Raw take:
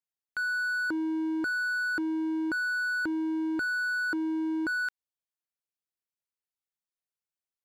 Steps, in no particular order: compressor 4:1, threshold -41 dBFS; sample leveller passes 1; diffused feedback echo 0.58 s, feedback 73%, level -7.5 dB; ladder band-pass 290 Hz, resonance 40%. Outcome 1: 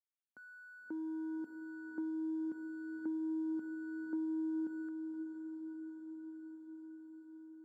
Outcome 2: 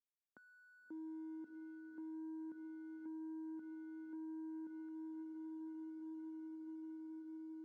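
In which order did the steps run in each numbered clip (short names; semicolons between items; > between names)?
ladder band-pass > compressor > sample leveller > diffused feedback echo; diffused feedback echo > compressor > ladder band-pass > sample leveller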